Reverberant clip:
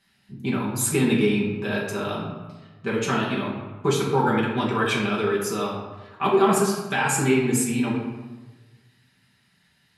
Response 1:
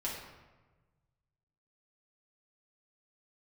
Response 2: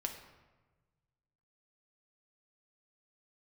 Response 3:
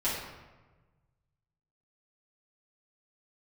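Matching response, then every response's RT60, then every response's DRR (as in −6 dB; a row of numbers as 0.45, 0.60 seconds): 1; 1.3, 1.3, 1.3 seconds; −5.5, 3.0, −10.5 decibels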